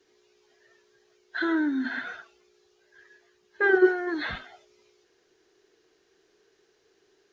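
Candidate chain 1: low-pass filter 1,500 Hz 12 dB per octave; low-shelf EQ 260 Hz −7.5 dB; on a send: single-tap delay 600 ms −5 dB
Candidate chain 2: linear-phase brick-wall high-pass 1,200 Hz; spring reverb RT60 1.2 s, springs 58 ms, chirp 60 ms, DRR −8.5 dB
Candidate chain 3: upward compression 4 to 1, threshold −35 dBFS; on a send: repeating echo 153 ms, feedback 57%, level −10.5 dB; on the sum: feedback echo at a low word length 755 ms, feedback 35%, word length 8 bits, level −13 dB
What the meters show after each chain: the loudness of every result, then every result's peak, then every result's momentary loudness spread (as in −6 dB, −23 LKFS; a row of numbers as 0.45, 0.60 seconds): −29.5, −23.0, −27.0 LKFS; −11.0, −9.0, −9.0 dBFS; 18, 19, 22 LU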